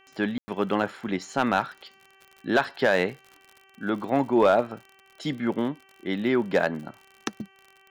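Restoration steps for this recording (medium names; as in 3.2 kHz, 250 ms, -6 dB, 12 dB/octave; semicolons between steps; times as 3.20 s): clip repair -11.5 dBFS; de-click; de-hum 386.9 Hz, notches 8; room tone fill 0.38–0.48 s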